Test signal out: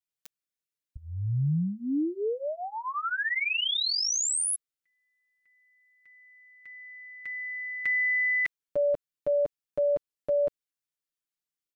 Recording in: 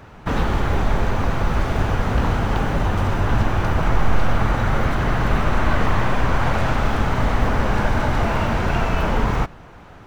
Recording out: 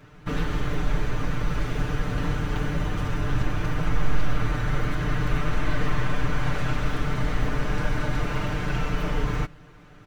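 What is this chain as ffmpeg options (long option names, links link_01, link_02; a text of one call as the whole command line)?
ffmpeg -i in.wav -af "equalizer=frequency=810:width=1.4:gain=-8.5,aecho=1:1:6.7:0.92,volume=-7.5dB" out.wav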